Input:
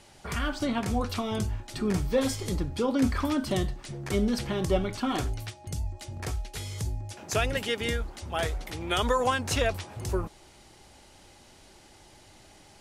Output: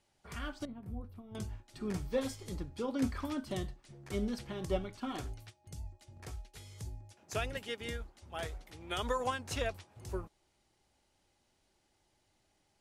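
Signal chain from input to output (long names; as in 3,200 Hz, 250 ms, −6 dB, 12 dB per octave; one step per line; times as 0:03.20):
0:00.65–0:01.35: drawn EQ curve 140 Hz 0 dB, 6,700 Hz −28 dB, 13,000 Hz −9 dB
expander for the loud parts 1.5 to 1, over −48 dBFS
level −7 dB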